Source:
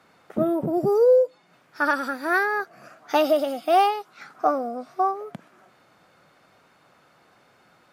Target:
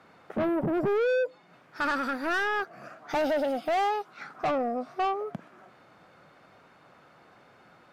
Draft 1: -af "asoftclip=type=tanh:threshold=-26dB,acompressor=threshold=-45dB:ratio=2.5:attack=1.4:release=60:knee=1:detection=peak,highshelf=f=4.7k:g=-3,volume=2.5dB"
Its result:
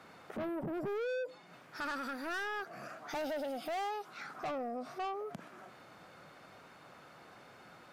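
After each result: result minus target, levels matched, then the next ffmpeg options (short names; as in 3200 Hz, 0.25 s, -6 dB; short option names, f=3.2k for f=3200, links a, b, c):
compressor: peak gain reduction +11.5 dB; 8000 Hz band +7.0 dB
-af "asoftclip=type=tanh:threshold=-26dB,highshelf=f=4.7k:g=-3,volume=2.5dB"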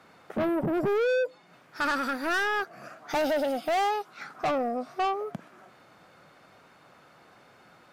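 8000 Hz band +5.5 dB
-af "asoftclip=type=tanh:threshold=-26dB,highshelf=f=4.7k:g=-11.5,volume=2.5dB"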